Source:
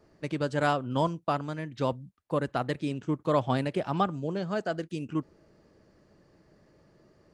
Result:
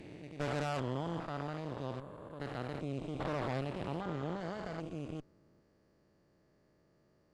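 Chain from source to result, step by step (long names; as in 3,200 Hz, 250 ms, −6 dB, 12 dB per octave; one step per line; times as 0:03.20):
spectrum averaged block by block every 400 ms
harmonic generator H 6 −11 dB, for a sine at −17.5 dBFS
level −8 dB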